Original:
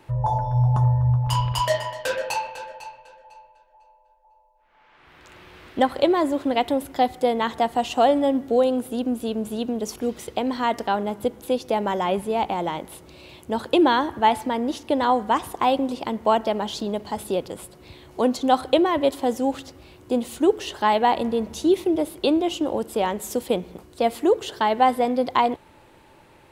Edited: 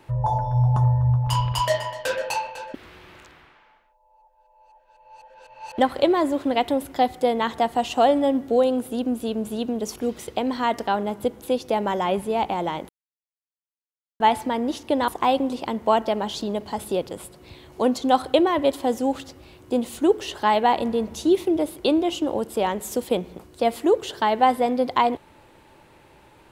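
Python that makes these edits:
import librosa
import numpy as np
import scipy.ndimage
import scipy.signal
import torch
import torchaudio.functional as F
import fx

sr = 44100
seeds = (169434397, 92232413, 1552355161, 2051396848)

y = fx.edit(x, sr, fx.reverse_span(start_s=2.74, length_s=3.04),
    fx.silence(start_s=12.89, length_s=1.31),
    fx.cut(start_s=15.08, length_s=0.39), tone=tone)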